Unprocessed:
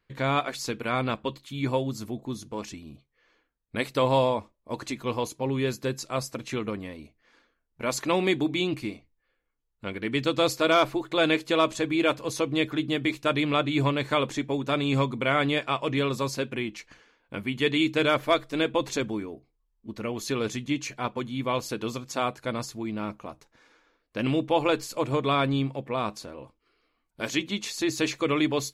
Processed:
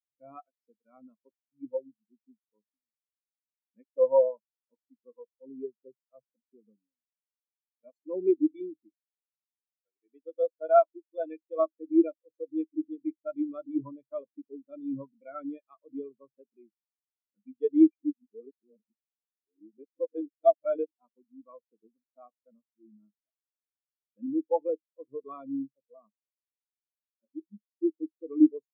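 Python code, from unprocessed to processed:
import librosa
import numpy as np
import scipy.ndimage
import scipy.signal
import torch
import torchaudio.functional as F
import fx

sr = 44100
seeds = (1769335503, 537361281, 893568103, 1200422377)

y = fx.bass_treble(x, sr, bass_db=-12, treble_db=-2, at=(8.89, 11.59))
y = fx.env_phaser(y, sr, low_hz=170.0, high_hz=2300.0, full_db=-28.5, at=(26.26, 28.28))
y = fx.edit(y, sr, fx.reverse_span(start_s=17.9, length_s=3.01), tone=tone)
y = scipy.signal.sosfilt(scipy.signal.butter(4, 150.0, 'highpass', fs=sr, output='sos'), y)
y = fx.spectral_expand(y, sr, expansion=4.0)
y = F.gain(torch.from_numpy(y), -1.5).numpy()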